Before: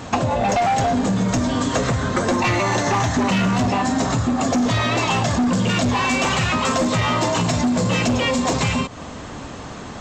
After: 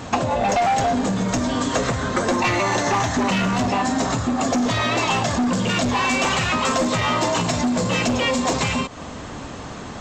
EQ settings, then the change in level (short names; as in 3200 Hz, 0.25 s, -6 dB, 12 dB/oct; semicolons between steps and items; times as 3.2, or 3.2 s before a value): dynamic EQ 110 Hz, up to -5 dB, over -34 dBFS, Q 0.75; 0.0 dB